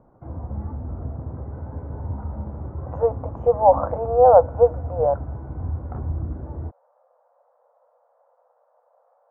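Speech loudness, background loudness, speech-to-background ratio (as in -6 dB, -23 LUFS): -19.0 LUFS, -32.5 LUFS, 13.5 dB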